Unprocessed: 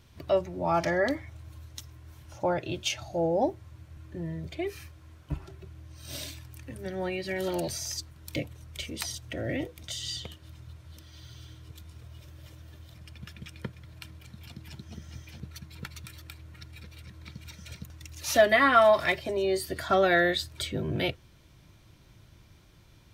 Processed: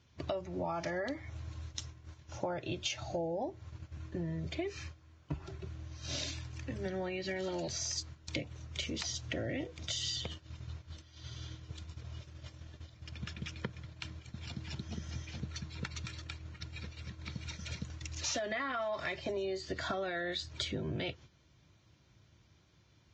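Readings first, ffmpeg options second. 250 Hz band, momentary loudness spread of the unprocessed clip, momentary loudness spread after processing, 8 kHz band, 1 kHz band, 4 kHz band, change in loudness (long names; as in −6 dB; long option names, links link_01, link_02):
−7.0 dB, 24 LU, 12 LU, −3.0 dB, −13.0 dB, −3.5 dB, −11.5 dB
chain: -af "highpass=frequency=58:width=0.5412,highpass=frequency=58:width=1.3066,alimiter=limit=-18.5dB:level=0:latency=1,agate=range=-11dB:threshold=-47dB:ratio=16:detection=peak,acompressor=threshold=-36dB:ratio=10,volume=2.5dB" -ar 16000 -c:a libvorbis -b:a 32k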